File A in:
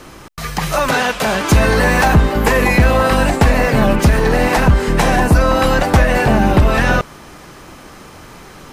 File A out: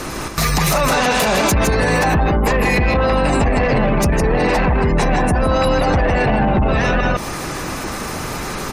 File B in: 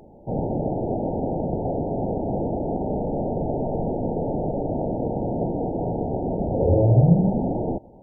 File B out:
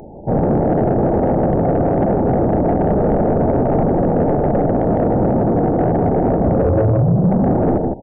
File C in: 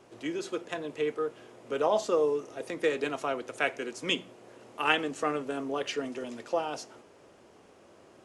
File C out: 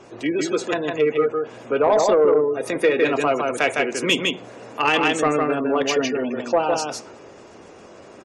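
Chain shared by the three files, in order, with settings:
band-stop 3.1 kHz, Q 15; compression 10:1, threshold -15 dBFS; delay 157 ms -4 dB; dynamic bell 1.5 kHz, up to -4 dB, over -37 dBFS, Q 2.8; peak limiter -16.5 dBFS; spectral gate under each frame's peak -30 dB strong; treble shelf 7.8 kHz +7.5 dB; saturation -19.5 dBFS; peak normalisation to -9 dBFS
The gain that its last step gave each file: +11.0 dB, +11.5 dB, +11.5 dB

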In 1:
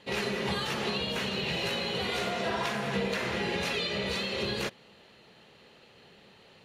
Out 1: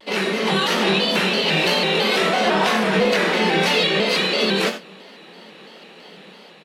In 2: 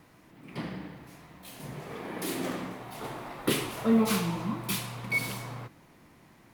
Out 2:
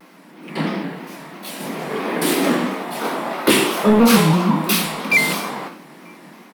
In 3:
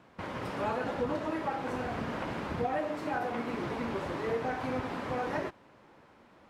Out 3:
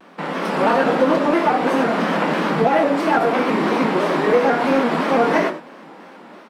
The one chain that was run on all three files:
steep high-pass 160 Hz 96 dB/octave; treble shelf 9.8 kHz -2.5 dB; band-stop 6.7 kHz, Q 11; level rider gain up to 4 dB; saturation -16.5 dBFS; doubling 24 ms -8 dB; echo from a far wall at 160 m, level -29 dB; gated-style reverb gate 110 ms rising, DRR 10 dB; vibrato with a chosen wave square 3 Hz, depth 100 cents; normalise loudness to -18 LUFS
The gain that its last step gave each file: +8.5 dB, +11.0 dB, +12.0 dB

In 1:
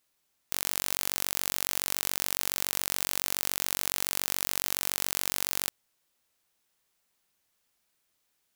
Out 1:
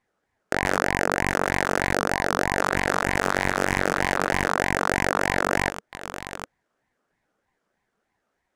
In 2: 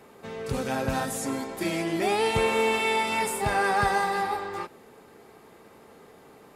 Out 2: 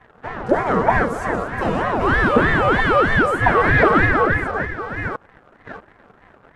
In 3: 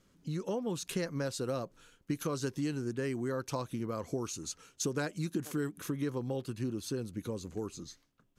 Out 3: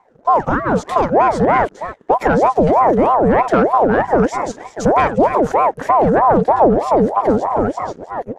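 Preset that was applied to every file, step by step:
chunks repeated in reverse 645 ms, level -11.5 dB; ten-band graphic EQ 125 Hz +11 dB, 250 Hz -10 dB, 500 Hz -7 dB, 1 kHz +10 dB, 2 kHz -8 dB, 4 kHz -9 dB; waveshaping leveller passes 2; tape spacing loss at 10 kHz 25 dB; ring modulator with a swept carrier 610 Hz, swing 50%, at 3.2 Hz; peak normalisation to -3 dBFS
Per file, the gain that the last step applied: +17.0 dB, +7.0 dB, +19.0 dB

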